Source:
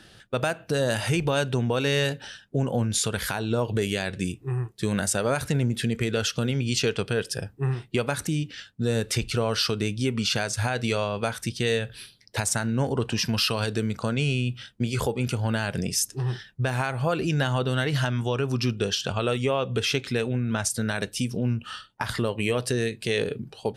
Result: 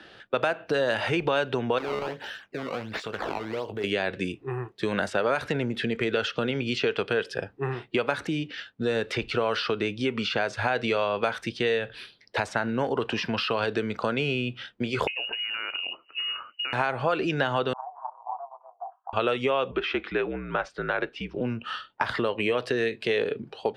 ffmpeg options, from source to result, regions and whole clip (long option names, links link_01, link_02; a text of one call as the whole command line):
ffmpeg -i in.wav -filter_complex "[0:a]asettb=1/sr,asplit=3[link_01][link_02][link_03];[link_01]atrim=end=1.784[link_04];[link_02]atrim=start=1.78:end=3.84,asetpts=PTS-STARTPTS,afade=type=in:duration=0.004:curve=qsin,afade=type=out:start_time=2.056:duration=0.004:curve=qsin,acompressor=threshold=-33dB:ratio=3:attack=3.2:release=140:knee=1:detection=peak,acrusher=samples=15:mix=1:aa=0.000001:lfo=1:lforange=24:lforate=1.4,asplit=2[link_05][link_06];[link_06]adelay=19,volume=-11.5dB[link_07];[link_05][link_07]amix=inputs=2:normalize=0,atrim=end_sample=90846[link_08];[link_03]atrim=start=3.836[link_09];[link_04][link_08]acrossfade=duration=0.004:curve1=hsin:curve2=qsin[link_10];[link_10][link_09]acrossfade=duration=0.004:curve1=qsin:curve2=hsin,asettb=1/sr,asplit=3[link_11][link_12][link_13];[link_11]atrim=end=15.074[link_14];[link_12]atrim=start=15.07:end=16.73,asetpts=PTS-STARTPTS,afade=type=in:duration=0.004:curve=qsin,afade=type=out:start_time=1.656:duration=0.004:curve=qsin,acompressor=threshold=-29dB:ratio=12:attack=3.2:release=140:knee=1:detection=peak,lowpass=frequency=2600:width_type=q:width=0.5098,lowpass=frequency=2600:width_type=q:width=0.6013,lowpass=frequency=2600:width_type=q:width=0.9,lowpass=frequency=2600:width_type=q:width=2.563,afreqshift=-3000[link_15];[link_13]atrim=start=16.726[link_16];[link_14][link_15]acrossfade=duration=0.004:curve1=hsin:curve2=qsin[link_17];[link_17][link_16]acrossfade=duration=0.004:curve1=qsin:curve2=hsin,asettb=1/sr,asplit=3[link_18][link_19][link_20];[link_18]atrim=end=17.734[link_21];[link_19]atrim=start=17.73:end=19.13,asetpts=PTS-STARTPTS,afade=type=in:duration=0.004:curve=qsin,afade=type=out:start_time=1.396:duration=0.004:curve=qsin,tremolo=f=280:d=0.974,asuperpass=centerf=870:order=8:qfactor=2.4[link_22];[link_20]atrim=start=19.126[link_23];[link_21][link_22]acrossfade=duration=0.004:curve1=hsin:curve2=qsin[link_24];[link_24][link_23]acrossfade=duration=0.004:curve1=qsin:curve2=hsin,asettb=1/sr,asplit=3[link_25][link_26][link_27];[link_25]atrim=end=19.714[link_28];[link_26]atrim=start=19.71:end=21.41,asetpts=PTS-STARTPTS,afade=type=in:duration=0.004:curve=qsin,afade=type=out:start_time=1.696:duration=0.004:curve=qsin,lowpass=2400,lowshelf=frequency=170:gain=-12,afreqshift=-56[link_29];[link_27]atrim=start=21.406[link_30];[link_28][link_29]acrossfade=duration=0.004:curve1=hsin:curve2=qsin[link_31];[link_31][link_30]acrossfade=duration=0.004:curve1=qsin:curve2=hsin,acrossover=split=280 4600:gain=0.178 1 0.178[link_32][link_33][link_34];[link_32][link_33][link_34]amix=inputs=3:normalize=0,acrossover=split=1100|4100[link_35][link_36][link_37];[link_35]acompressor=threshold=-29dB:ratio=4[link_38];[link_36]acompressor=threshold=-32dB:ratio=4[link_39];[link_37]acompressor=threshold=-47dB:ratio=4[link_40];[link_38][link_39][link_40]amix=inputs=3:normalize=0,aemphasis=mode=reproduction:type=cd,volume=5.5dB" out.wav